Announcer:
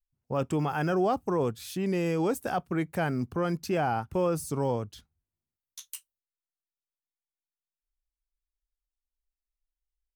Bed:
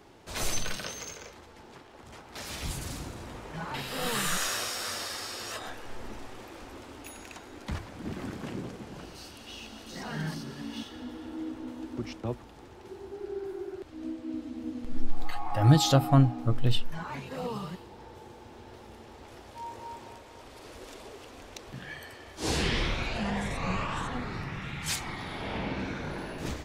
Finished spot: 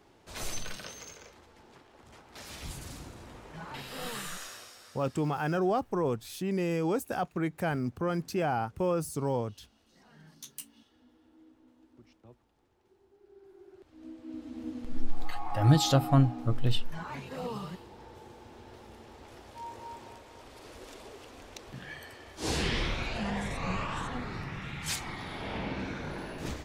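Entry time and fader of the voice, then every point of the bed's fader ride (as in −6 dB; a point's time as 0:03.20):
4.65 s, −2.0 dB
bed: 0:04.02 −6 dB
0:05.02 −22 dB
0:13.22 −22 dB
0:14.60 −2 dB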